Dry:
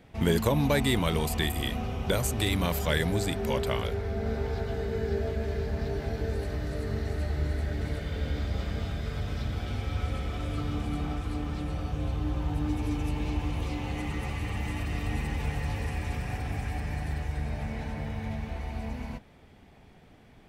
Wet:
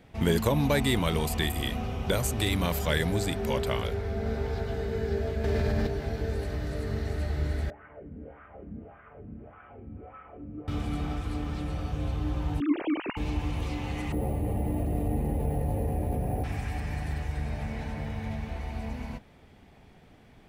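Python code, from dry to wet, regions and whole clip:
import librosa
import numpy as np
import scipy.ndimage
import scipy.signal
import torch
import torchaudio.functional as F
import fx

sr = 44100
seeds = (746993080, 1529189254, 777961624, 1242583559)

y = fx.chain(x, sr, fx.room_flutter(wall_m=8.6, rt60_s=0.91),
    fx.env_flatten(amount_pct=100), at=(5.44, 5.87))
y = fx.chain(y, sr, fx.steep_lowpass(hz=2900.0, slope=72),
    fx.wah_lfo(hz=1.7, low_hz=220.0, high_hz=1300.0, q=3.5),
    fx.low_shelf(hz=97.0, db=10.0), at=(7.7, 10.68))
y = fx.chain(y, sr, fx.sine_speech(),
    fx.high_shelf(hz=2100.0, db=8.5), at=(12.6, 13.17))
y = fx.chain(y, sr, fx.curve_eq(hz=(100.0, 640.0, 1200.0, 2200.0), db=(0, 7, -14, -17)),
    fx.resample_bad(factor=4, down='filtered', up='hold'),
    fx.env_flatten(amount_pct=50), at=(14.12, 16.44))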